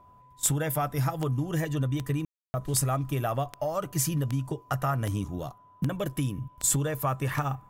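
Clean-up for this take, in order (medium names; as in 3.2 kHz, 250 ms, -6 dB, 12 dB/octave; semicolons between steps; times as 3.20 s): de-click; band-stop 1 kHz, Q 30; room tone fill 2.25–2.54 s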